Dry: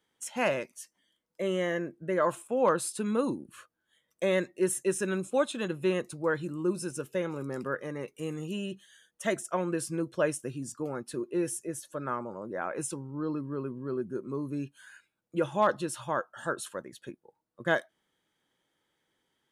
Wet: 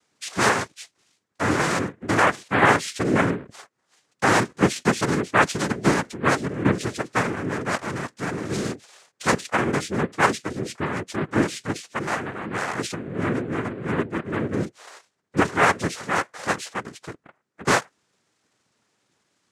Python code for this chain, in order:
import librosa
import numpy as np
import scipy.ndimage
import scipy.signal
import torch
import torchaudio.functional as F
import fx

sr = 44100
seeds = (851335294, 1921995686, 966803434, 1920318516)

y = fx.noise_vocoder(x, sr, seeds[0], bands=3)
y = y * librosa.db_to_amplitude(8.0)